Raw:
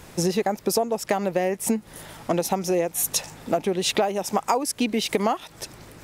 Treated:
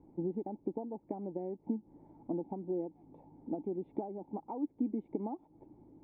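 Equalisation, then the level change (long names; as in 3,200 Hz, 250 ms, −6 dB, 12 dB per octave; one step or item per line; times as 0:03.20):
dynamic equaliser 1,800 Hz, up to −4 dB, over −41 dBFS, Q 0.89
formant resonators in series u
−3.0 dB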